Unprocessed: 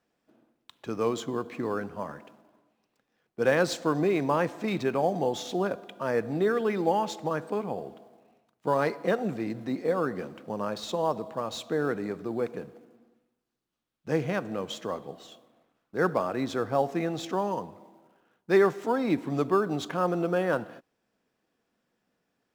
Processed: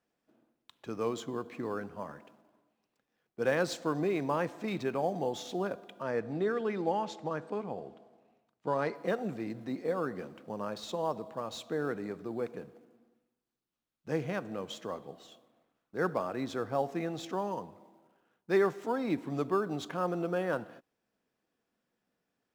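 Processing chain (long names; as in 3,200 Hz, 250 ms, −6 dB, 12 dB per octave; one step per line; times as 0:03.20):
0:06.02–0:08.95: high-frequency loss of the air 55 metres
level −5.5 dB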